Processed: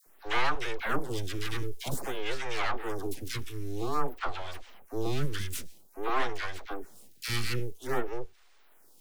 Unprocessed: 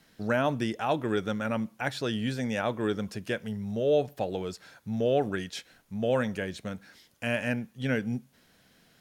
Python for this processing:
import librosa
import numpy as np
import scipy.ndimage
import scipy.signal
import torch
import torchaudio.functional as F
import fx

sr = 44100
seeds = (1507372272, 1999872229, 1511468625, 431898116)

y = scipy.signal.sosfilt(scipy.signal.cheby1(2, 1.0, [260.0, 560.0], 'bandstop', fs=sr, output='sos'), x)
y = fx.high_shelf(y, sr, hz=6500.0, db=9.5)
y = np.abs(y)
y = fx.dispersion(y, sr, late='lows', ms=65.0, hz=880.0)
y = fx.stagger_phaser(y, sr, hz=0.51)
y = F.gain(torch.from_numpy(y), 5.0).numpy()